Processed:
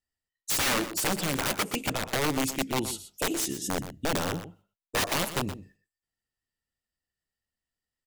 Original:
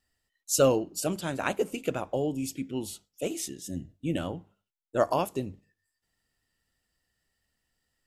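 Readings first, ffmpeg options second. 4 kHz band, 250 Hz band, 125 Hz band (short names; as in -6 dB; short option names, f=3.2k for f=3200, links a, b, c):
+9.0 dB, 0.0 dB, +0.5 dB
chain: -filter_complex "[0:a]asplit=2[a][b];[b]acompressor=threshold=-33dB:ratio=16,volume=2dB[c];[a][c]amix=inputs=2:normalize=0,aeval=exprs='(mod(11.2*val(0)+1,2)-1)/11.2':c=same,agate=range=-20dB:threshold=-60dB:ratio=16:detection=peak,aecho=1:1:121:0.251"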